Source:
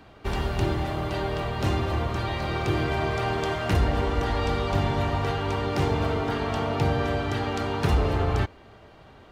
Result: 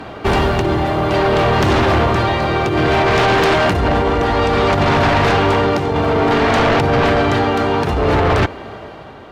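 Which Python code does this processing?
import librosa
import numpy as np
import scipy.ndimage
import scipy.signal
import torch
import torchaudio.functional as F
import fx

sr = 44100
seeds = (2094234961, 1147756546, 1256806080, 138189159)

y = fx.highpass(x, sr, hz=500.0, slope=6)
y = fx.tilt_eq(y, sr, slope=-2.5)
y = fx.over_compress(y, sr, threshold_db=-28.0, ratio=-0.5)
y = y * (1.0 - 0.54 / 2.0 + 0.54 / 2.0 * np.cos(2.0 * np.pi * 0.59 * (np.arange(len(y)) / sr)))
y = fx.fold_sine(y, sr, drive_db=10, ceiling_db=-17.0)
y = F.gain(torch.from_numpy(y), 7.0).numpy()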